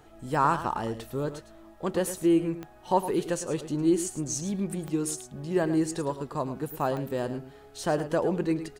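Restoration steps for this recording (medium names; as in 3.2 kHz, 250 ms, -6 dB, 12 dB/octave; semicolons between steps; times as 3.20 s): de-click; inverse comb 107 ms -12 dB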